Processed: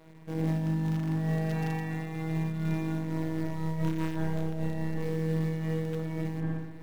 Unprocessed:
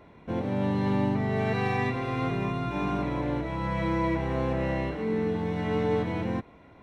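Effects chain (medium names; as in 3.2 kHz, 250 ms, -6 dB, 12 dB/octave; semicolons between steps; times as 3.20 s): hum notches 60/120/180 Hz; robot voice 160 Hz; tilt EQ -1.5 dB/octave; in parallel at -6 dB: companded quantiser 4-bit; on the sum: wavefolder -13.5 dBFS; on a send: feedback echo behind a low-pass 62 ms, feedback 74%, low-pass 1.7 kHz, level -4 dB; on the sum: peak limiter -17.5 dBFS, peak gain reduction 9 dB; random flutter of the level, depth 65%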